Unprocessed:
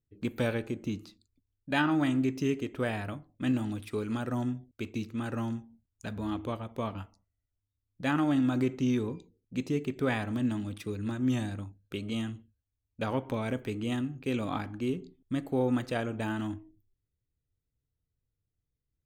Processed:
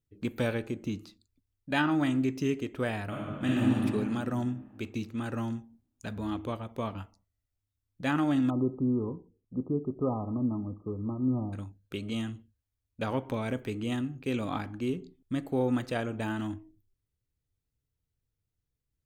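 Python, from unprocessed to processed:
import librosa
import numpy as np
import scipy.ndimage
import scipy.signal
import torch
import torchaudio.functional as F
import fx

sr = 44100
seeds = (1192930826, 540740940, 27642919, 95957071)

y = fx.reverb_throw(x, sr, start_s=3.06, length_s=0.68, rt60_s=2.3, drr_db=-5.0)
y = fx.brickwall_lowpass(y, sr, high_hz=1300.0, at=(8.5, 11.53))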